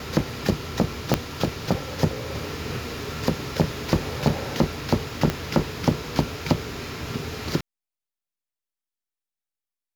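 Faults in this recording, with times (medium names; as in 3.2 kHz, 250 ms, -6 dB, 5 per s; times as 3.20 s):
1.14 s: pop -3 dBFS
5.30 s: pop -9 dBFS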